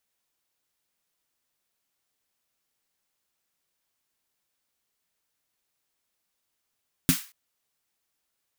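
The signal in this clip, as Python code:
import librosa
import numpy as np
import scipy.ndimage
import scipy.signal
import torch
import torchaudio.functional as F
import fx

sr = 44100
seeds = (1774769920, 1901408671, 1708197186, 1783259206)

y = fx.drum_snare(sr, seeds[0], length_s=0.23, hz=170.0, second_hz=260.0, noise_db=-5.5, noise_from_hz=1200.0, decay_s=0.11, noise_decay_s=0.35)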